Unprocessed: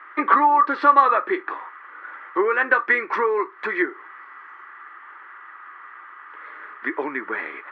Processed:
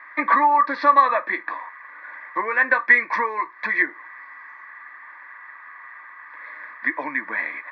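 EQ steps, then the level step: high-pass 150 Hz; peaking EQ 810 Hz -12 dB 0.22 oct; static phaser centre 2 kHz, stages 8; +5.5 dB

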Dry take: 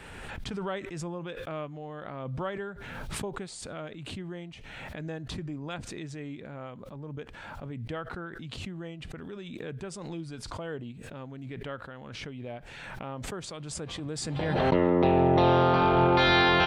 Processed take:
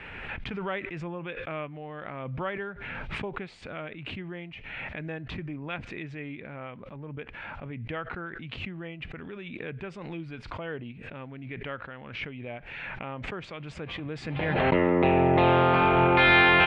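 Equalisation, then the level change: resonant low-pass 2.4 kHz, resonance Q 2.8; 0.0 dB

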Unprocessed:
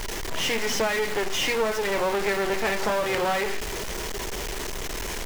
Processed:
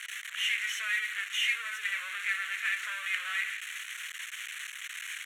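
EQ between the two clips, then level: high-pass 1.4 kHz 24 dB/octave; low-pass 8.9 kHz 12 dB/octave; static phaser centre 2.1 kHz, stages 4; 0.0 dB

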